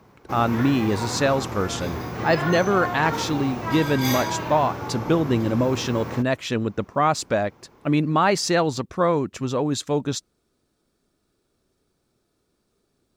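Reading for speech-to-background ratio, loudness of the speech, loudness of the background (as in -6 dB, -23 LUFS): 6.5 dB, -23.0 LUFS, -29.5 LUFS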